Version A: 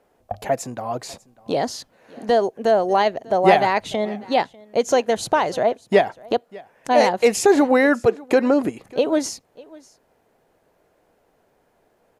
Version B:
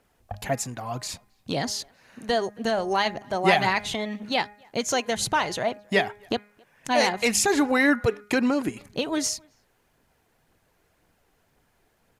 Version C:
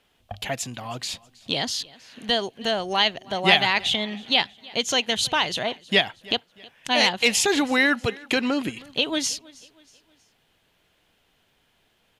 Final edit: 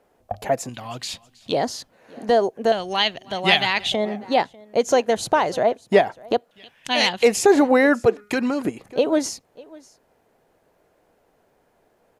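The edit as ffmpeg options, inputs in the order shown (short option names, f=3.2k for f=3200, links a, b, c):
-filter_complex "[2:a]asplit=3[a][b][c];[0:a]asplit=5[d][e][f][g][h];[d]atrim=end=0.692[i];[a]atrim=start=0.688:end=1.522[j];[e]atrim=start=1.518:end=2.722[k];[b]atrim=start=2.718:end=3.922[l];[f]atrim=start=3.918:end=6.512[m];[c]atrim=start=6.508:end=7.232[n];[g]atrim=start=7.228:end=8.172[o];[1:a]atrim=start=8.168:end=8.652[p];[h]atrim=start=8.648[q];[i][j]acrossfade=d=0.004:c1=hsin:c2=hsin[r];[r][k]acrossfade=d=0.004:c1=hsin:c2=hsin[s];[s][l]acrossfade=d=0.004:c1=hsin:c2=hsin[t];[t][m]acrossfade=d=0.004:c1=hsin:c2=hsin[u];[u][n]acrossfade=d=0.004:c1=hsin:c2=hsin[v];[v][o]acrossfade=d=0.004:c1=hsin:c2=hsin[w];[w][p]acrossfade=d=0.004:c1=hsin:c2=hsin[x];[x][q]acrossfade=d=0.004:c1=hsin:c2=hsin"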